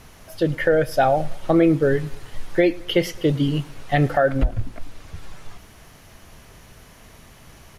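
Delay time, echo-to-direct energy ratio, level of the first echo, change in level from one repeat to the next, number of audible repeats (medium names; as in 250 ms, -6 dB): 107 ms, -21.5 dB, -22.5 dB, -6.5 dB, 2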